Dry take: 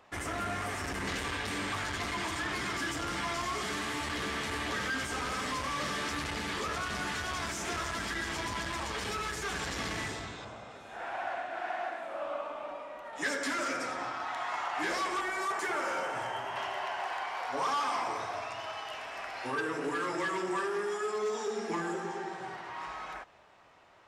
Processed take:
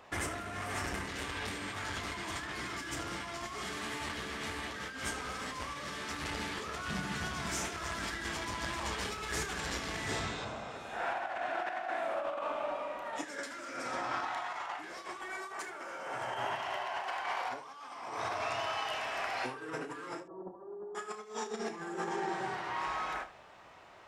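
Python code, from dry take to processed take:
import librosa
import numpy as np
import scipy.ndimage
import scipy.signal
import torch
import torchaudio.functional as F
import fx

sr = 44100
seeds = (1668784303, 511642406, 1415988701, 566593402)

y = fx.over_compress(x, sr, threshold_db=-38.0, ratio=-0.5)
y = fx.peak_eq(y, sr, hz=170.0, db=12.0, octaves=0.88, at=(6.88, 7.47))
y = fx.cheby2_lowpass(y, sr, hz=2200.0, order=4, stop_db=50, at=(20.2, 20.95))
y = fx.room_early_taps(y, sr, ms=(32, 76), db=(-10.0, -14.5))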